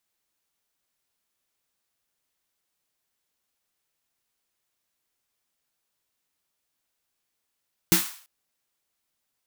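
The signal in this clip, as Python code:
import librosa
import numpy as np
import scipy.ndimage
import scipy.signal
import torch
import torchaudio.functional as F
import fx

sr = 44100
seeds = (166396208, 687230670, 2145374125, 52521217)

y = fx.drum_snare(sr, seeds[0], length_s=0.34, hz=180.0, second_hz=330.0, noise_db=0.0, noise_from_hz=880.0, decay_s=0.18, noise_decay_s=0.48)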